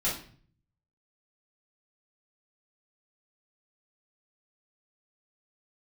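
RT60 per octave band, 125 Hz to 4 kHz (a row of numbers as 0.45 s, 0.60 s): 0.95 s, 0.65 s, 0.50 s, 0.45 s, 0.45 s, 0.40 s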